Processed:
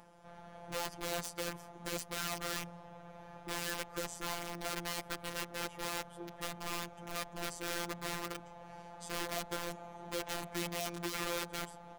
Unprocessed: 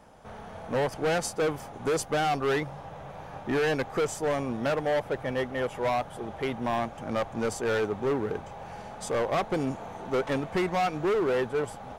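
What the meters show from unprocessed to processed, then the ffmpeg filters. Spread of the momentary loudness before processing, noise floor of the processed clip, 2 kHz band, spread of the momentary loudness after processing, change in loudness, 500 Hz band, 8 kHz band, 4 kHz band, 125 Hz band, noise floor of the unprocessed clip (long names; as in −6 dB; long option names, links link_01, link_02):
13 LU, −54 dBFS, −8.0 dB, 12 LU, −11.0 dB, −16.5 dB, −1.5 dB, −1.5 dB, −12.5 dB, −44 dBFS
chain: -af "aeval=exprs='(mod(16.8*val(0)+1,2)-1)/16.8':channel_layout=same,afftfilt=real='hypot(re,im)*cos(PI*b)':imag='0':win_size=1024:overlap=0.75,acompressor=mode=upward:threshold=-46dB:ratio=2.5,volume=-6.5dB"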